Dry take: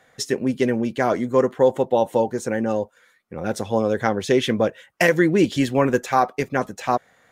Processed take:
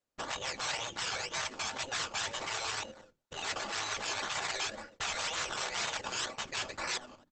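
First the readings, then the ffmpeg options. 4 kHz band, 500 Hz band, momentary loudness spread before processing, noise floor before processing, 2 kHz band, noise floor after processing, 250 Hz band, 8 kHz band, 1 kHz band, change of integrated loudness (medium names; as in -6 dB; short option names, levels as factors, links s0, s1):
-0.5 dB, -25.0 dB, 8 LU, -60 dBFS, -8.5 dB, -75 dBFS, -30.0 dB, -0.5 dB, -14.0 dB, -14.0 dB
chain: -filter_complex "[0:a]agate=range=0.0158:threshold=0.00447:ratio=16:detection=peak,aresample=16000,volume=13.3,asoftclip=hard,volume=0.075,aresample=44100,bass=f=250:g=7,treble=f=4000:g=6,deesser=0.6,asplit=2[s0][s1];[s1]adelay=89,lowpass=f=2900:p=1,volume=0.0708,asplit=2[s2][s3];[s3]adelay=89,lowpass=f=2900:p=1,volume=0.47,asplit=2[s4][s5];[s5]adelay=89,lowpass=f=2900:p=1,volume=0.47[s6];[s2][s4][s6]amix=inputs=3:normalize=0[s7];[s0][s7]amix=inputs=2:normalize=0,acrusher=samples=18:mix=1:aa=0.000001:lfo=1:lforange=10.8:lforate=2,aecho=1:1:3.5:0.67,afftfilt=real='re*lt(hypot(re,im),0.1)':imag='im*lt(hypot(re,im),0.1)':win_size=1024:overlap=0.75,lowshelf=f=99:g=-2.5,acrossover=split=450|3000[s8][s9][s10];[s8]acompressor=threshold=0.00398:ratio=5[s11];[s11][s9][s10]amix=inputs=3:normalize=0,bandreject=f=60:t=h:w=6,bandreject=f=120:t=h:w=6,bandreject=f=180:t=h:w=6,bandreject=f=240:t=h:w=6,bandreject=f=300:t=h:w=6,bandreject=f=360:t=h:w=6,bandreject=f=420:t=h:w=6" -ar 48000 -c:a libopus -b:a 12k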